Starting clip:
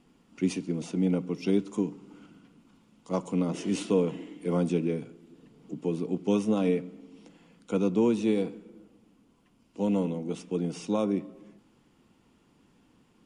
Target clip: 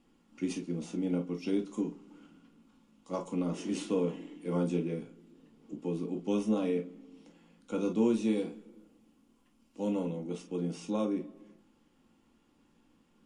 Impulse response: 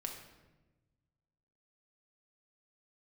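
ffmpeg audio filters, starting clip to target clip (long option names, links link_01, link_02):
-filter_complex "[0:a]asettb=1/sr,asplit=3[link_01][link_02][link_03];[link_01]atrim=end=7.774[link_04];[link_02]atrim=start=7.77:end=9.9,asetpts=PTS-STARTPTS,afade=type=in:duration=0.004:curve=qsin,afade=type=out:start_time=2.126:duration=0.004:curve=qsin,highshelf=frequency=5400:gain=5.5[link_05];[link_03]atrim=start=9.896[link_06];[link_04][link_05]acrossfade=duration=0.004:curve1=hsin:curve2=qsin[link_07];[link_07][link_06]acrossfade=duration=0.004:curve1=qsin:curve2=hsin[link_08];[1:a]atrim=start_sample=2205,atrim=end_sample=3528,asetrate=61740,aresample=44100[link_09];[link_08][link_09]afir=irnorm=-1:irlink=0"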